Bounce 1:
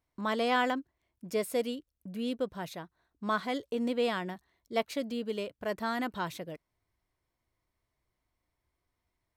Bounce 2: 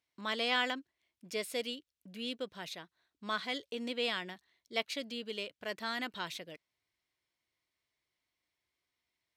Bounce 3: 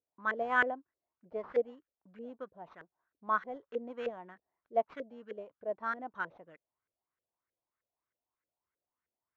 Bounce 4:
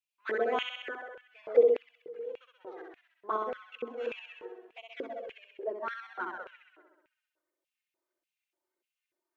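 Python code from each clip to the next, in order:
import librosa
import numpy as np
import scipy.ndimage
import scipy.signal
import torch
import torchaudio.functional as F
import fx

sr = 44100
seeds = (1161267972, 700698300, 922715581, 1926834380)

y1 = fx.weighting(x, sr, curve='D')
y1 = F.gain(torch.from_numpy(y1), -7.0).numpy()
y2 = fx.sample_hold(y1, sr, seeds[0], rate_hz=9800.0, jitter_pct=0)
y2 = fx.filter_lfo_lowpass(y2, sr, shape='saw_up', hz=3.2, low_hz=470.0, high_hz=1700.0, q=3.8)
y2 = fx.upward_expand(y2, sr, threshold_db=-40.0, expansion=1.5)
y3 = fx.room_flutter(y2, sr, wall_m=11.1, rt60_s=1.2)
y3 = fx.env_flanger(y3, sr, rest_ms=3.3, full_db=-26.0)
y3 = fx.filter_lfo_highpass(y3, sr, shape='square', hz=1.7, low_hz=370.0, high_hz=2600.0, q=5.5)
y3 = F.gain(torch.from_numpy(y3), 1.5).numpy()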